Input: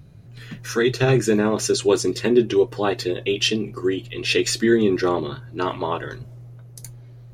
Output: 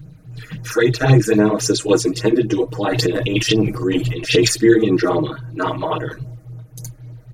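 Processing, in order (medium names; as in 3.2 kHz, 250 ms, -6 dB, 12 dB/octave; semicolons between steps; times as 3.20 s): 2.68–4.51 s: transient shaper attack -3 dB, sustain +12 dB; phase shifter stages 8, 3.7 Hz, lowest notch 110–4200 Hz; comb 6.4 ms, depth 88%; trim +4 dB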